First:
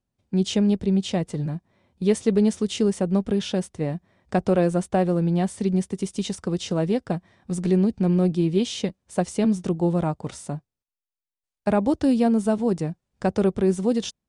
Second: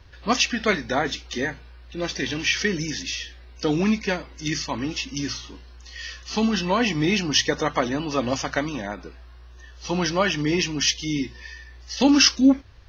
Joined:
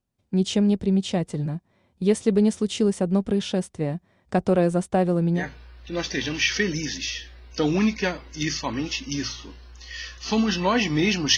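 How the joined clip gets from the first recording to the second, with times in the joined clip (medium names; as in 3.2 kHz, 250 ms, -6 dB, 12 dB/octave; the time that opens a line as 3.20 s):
first
5.40 s: go over to second from 1.45 s, crossfade 0.12 s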